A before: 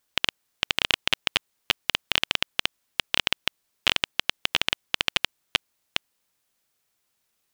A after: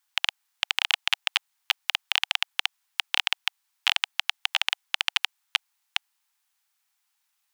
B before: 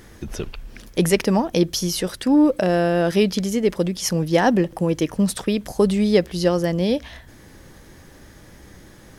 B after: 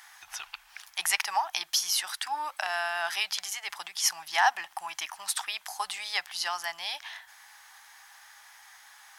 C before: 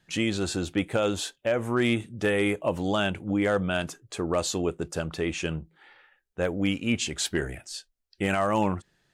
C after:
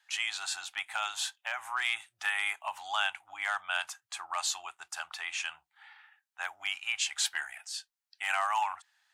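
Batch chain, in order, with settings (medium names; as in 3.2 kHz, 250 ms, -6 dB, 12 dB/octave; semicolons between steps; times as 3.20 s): elliptic high-pass 790 Hz, stop band 40 dB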